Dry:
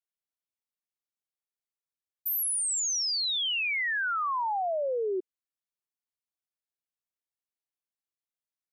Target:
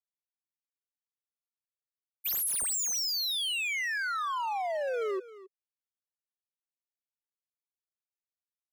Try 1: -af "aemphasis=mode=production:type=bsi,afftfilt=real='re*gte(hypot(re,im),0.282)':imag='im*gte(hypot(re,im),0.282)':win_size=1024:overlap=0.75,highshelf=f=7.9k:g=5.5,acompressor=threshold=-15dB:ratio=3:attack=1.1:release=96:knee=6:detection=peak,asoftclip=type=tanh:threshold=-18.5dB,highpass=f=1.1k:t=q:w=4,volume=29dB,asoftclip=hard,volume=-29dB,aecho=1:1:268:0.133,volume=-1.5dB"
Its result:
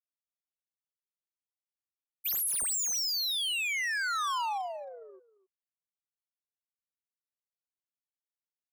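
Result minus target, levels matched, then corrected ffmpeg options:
500 Hz band -11.5 dB; compressor: peak gain reduction +6.5 dB
-af "aemphasis=mode=production:type=bsi,afftfilt=real='re*gte(hypot(re,im),0.282)':imag='im*gte(hypot(re,im),0.282)':win_size=1024:overlap=0.75,highshelf=f=7.9k:g=5.5,asoftclip=type=tanh:threshold=-18.5dB,highpass=f=420:t=q:w=4,volume=29dB,asoftclip=hard,volume=-29dB,aecho=1:1:268:0.133,volume=-1.5dB"

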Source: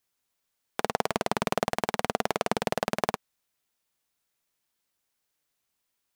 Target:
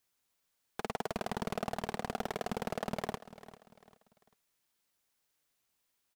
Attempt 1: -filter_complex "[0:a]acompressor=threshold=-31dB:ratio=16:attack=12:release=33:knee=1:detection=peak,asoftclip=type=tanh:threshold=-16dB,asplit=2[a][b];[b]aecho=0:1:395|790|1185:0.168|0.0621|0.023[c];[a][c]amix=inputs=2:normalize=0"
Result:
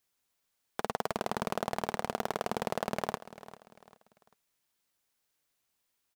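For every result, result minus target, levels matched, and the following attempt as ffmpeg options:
compressor: peak gain reduction +7 dB; soft clip: distortion -6 dB
-filter_complex "[0:a]asoftclip=type=tanh:threshold=-16dB,asplit=2[a][b];[b]aecho=0:1:395|790|1185:0.168|0.0621|0.023[c];[a][c]amix=inputs=2:normalize=0"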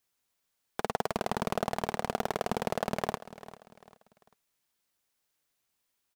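soft clip: distortion -7 dB
-filter_complex "[0:a]asoftclip=type=tanh:threshold=-26dB,asplit=2[a][b];[b]aecho=0:1:395|790|1185:0.168|0.0621|0.023[c];[a][c]amix=inputs=2:normalize=0"

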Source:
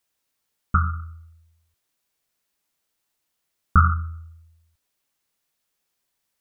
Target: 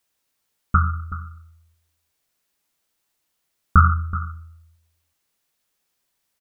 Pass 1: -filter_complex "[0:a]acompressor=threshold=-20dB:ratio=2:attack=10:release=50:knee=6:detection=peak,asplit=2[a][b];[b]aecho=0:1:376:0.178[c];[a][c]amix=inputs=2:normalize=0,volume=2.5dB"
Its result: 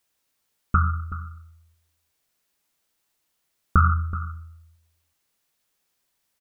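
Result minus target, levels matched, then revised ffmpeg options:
compressor: peak gain reduction +5.5 dB
-filter_complex "[0:a]asplit=2[a][b];[b]aecho=0:1:376:0.178[c];[a][c]amix=inputs=2:normalize=0,volume=2.5dB"

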